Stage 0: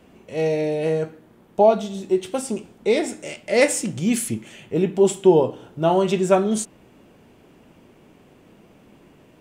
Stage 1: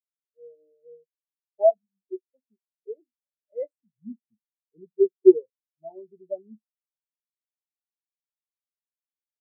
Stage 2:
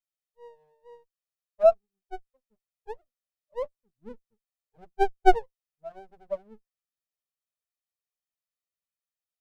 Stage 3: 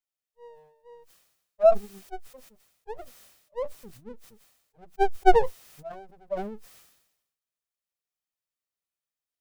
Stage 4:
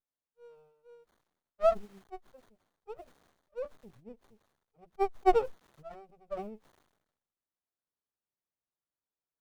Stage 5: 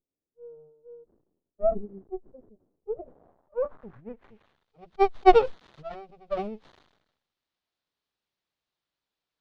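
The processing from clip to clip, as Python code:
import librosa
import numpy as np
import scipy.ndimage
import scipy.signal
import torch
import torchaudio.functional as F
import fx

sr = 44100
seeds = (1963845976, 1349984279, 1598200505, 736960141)

y1 = fx.spectral_expand(x, sr, expansion=4.0)
y2 = fx.lower_of_two(y1, sr, delay_ms=1.6)
y3 = fx.sustainer(y2, sr, db_per_s=63.0)
y4 = fx.running_max(y3, sr, window=17)
y4 = y4 * librosa.db_to_amplitude(-6.5)
y5 = fx.filter_sweep_lowpass(y4, sr, from_hz=380.0, to_hz=4000.0, start_s=2.81, end_s=4.71, q=1.8)
y5 = y5 * librosa.db_to_amplitude(8.0)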